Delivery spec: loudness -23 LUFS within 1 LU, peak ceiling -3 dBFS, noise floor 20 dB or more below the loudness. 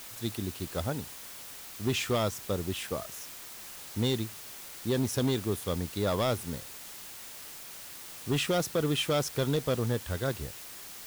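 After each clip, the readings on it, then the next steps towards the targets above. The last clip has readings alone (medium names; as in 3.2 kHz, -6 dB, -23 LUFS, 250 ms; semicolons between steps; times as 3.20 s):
clipped samples 1.2%; clipping level -22.0 dBFS; noise floor -45 dBFS; noise floor target -53 dBFS; loudness -32.5 LUFS; peak level -22.0 dBFS; loudness target -23.0 LUFS
-> clip repair -22 dBFS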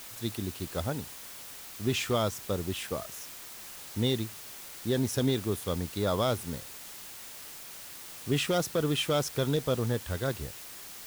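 clipped samples 0.0%; noise floor -45 dBFS; noise floor target -53 dBFS
-> noise reduction 8 dB, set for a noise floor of -45 dBFS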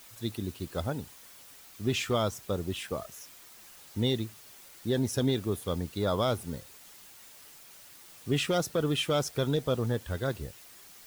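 noise floor -52 dBFS; loudness -31.5 LUFS; peak level -17.0 dBFS; loudness target -23.0 LUFS
-> trim +8.5 dB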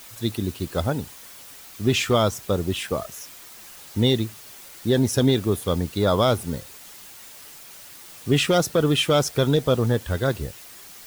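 loudness -23.0 LUFS; peak level -8.5 dBFS; noise floor -44 dBFS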